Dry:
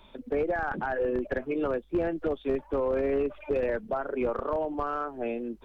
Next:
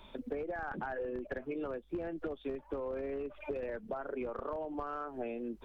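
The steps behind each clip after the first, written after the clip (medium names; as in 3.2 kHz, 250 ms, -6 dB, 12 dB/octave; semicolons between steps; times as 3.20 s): compression 10:1, threshold -35 dBFS, peak gain reduction 12.5 dB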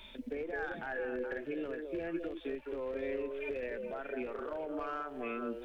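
resonant high shelf 1.5 kHz +8 dB, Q 1.5; repeats whose band climbs or falls 211 ms, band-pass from 460 Hz, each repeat 1.4 oct, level -2 dB; harmonic-percussive split percussive -10 dB; trim +1 dB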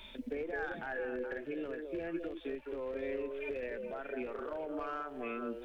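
gain riding 2 s; trim -1 dB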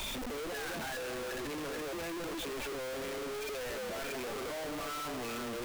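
one-bit comparator; trim +1 dB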